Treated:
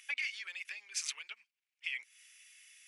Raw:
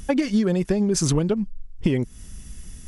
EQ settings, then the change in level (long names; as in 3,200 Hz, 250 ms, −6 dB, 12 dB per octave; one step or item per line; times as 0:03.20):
four-pole ladder high-pass 2,100 Hz, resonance 65%
high-shelf EQ 3,900 Hz −8.5 dB
+5.0 dB